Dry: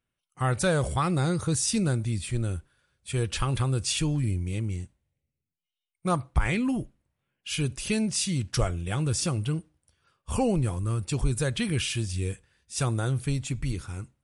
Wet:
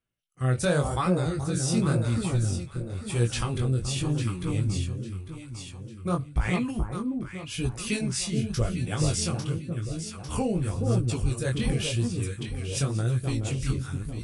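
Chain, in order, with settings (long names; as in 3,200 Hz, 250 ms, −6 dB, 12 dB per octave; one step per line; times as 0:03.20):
delay that swaps between a low-pass and a high-pass 425 ms, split 1,100 Hz, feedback 63%, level −3.5 dB
chorus effect 0.91 Hz, delay 16.5 ms, depth 7.2 ms
rotating-speaker cabinet horn 0.85 Hz, later 5.5 Hz, at 0:10.15
level +3.5 dB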